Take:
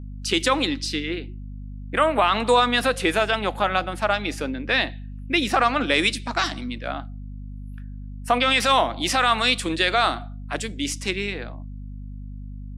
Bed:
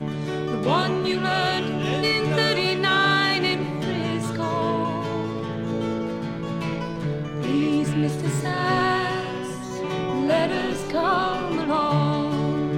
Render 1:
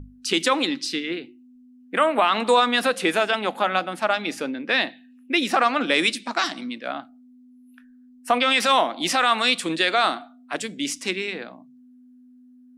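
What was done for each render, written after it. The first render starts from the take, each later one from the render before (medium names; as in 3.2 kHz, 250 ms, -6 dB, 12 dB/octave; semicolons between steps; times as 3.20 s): hum notches 50/100/150/200 Hz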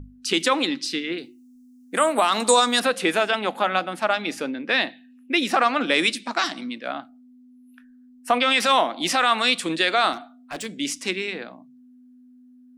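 1.18–2.80 s: resonant high shelf 4.2 kHz +13.5 dB, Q 1.5; 10.13–10.66 s: overload inside the chain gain 27.5 dB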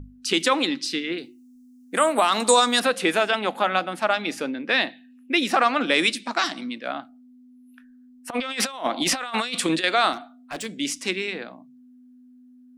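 8.30–9.84 s: compressor with a negative ratio -25 dBFS, ratio -0.5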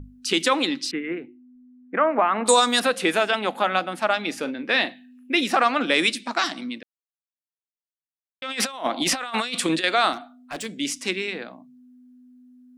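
0.91–2.46 s: steep low-pass 2.3 kHz; 4.39–5.41 s: doubling 40 ms -12.5 dB; 6.83–8.42 s: mute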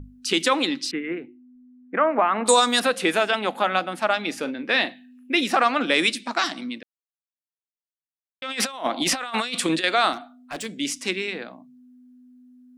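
no audible change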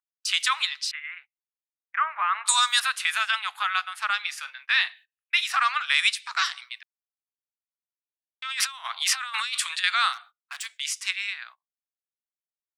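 steep high-pass 1.1 kHz 36 dB/octave; gate -46 dBFS, range -24 dB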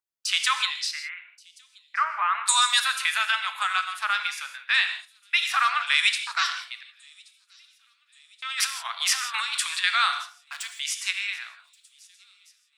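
feedback echo behind a high-pass 1128 ms, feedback 59%, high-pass 4 kHz, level -23 dB; gated-style reverb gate 190 ms flat, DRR 7.5 dB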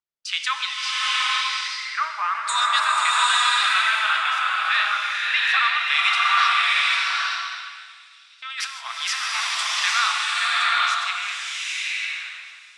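distance through air 82 m; swelling reverb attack 840 ms, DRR -5.5 dB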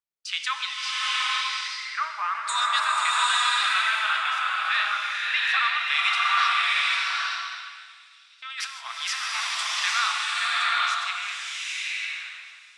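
trim -3.5 dB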